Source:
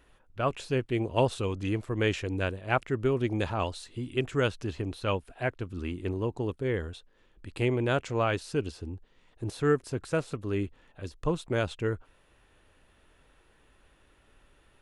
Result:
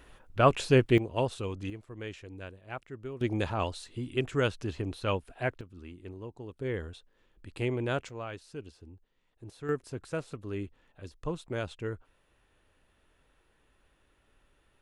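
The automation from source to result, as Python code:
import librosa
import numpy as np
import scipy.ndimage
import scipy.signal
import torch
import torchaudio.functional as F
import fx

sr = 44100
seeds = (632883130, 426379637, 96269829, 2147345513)

y = fx.gain(x, sr, db=fx.steps((0.0, 6.5), (0.98, -4.5), (1.7, -13.5), (3.21, -1.0), (5.61, -12.0), (6.56, -4.0), (8.09, -12.5), (9.69, -6.0)))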